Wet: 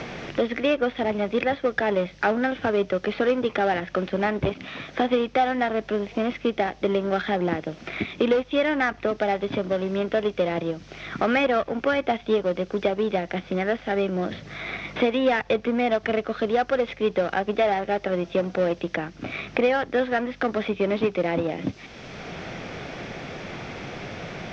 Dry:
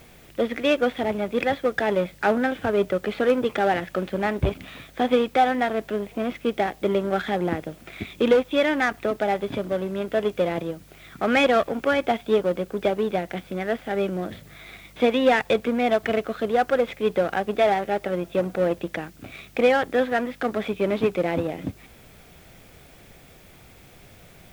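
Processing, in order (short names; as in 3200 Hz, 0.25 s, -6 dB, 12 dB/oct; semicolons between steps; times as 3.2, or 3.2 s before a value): elliptic low-pass 5900 Hz, stop band 60 dB; three-band squash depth 70%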